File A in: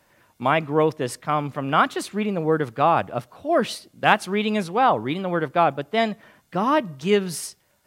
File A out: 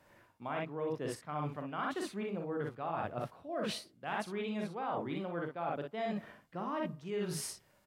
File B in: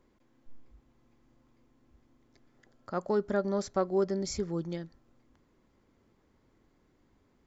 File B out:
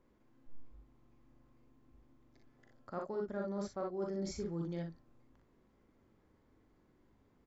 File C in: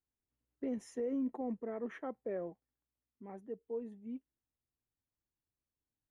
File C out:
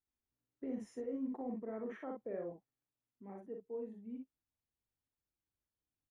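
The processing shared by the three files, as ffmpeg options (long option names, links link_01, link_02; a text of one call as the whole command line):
ffmpeg -i in.wav -af "highshelf=frequency=3200:gain=-7.5,aecho=1:1:41|60:0.501|0.562,areverse,acompressor=threshold=-32dB:ratio=6,areverse,volume=-3.5dB" out.wav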